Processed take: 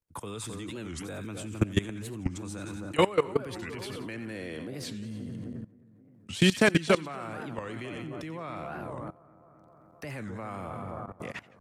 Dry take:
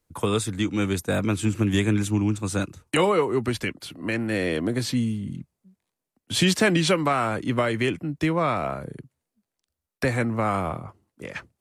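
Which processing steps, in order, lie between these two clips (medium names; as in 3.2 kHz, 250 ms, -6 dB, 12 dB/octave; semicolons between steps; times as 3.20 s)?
two-band feedback delay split 1.4 kHz, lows 263 ms, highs 89 ms, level -9 dB; level held to a coarse grid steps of 19 dB; warped record 45 rpm, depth 250 cents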